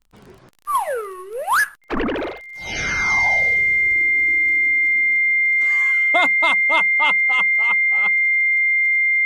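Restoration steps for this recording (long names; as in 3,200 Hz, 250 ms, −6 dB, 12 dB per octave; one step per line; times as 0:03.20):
click removal
notch filter 2,100 Hz, Q 30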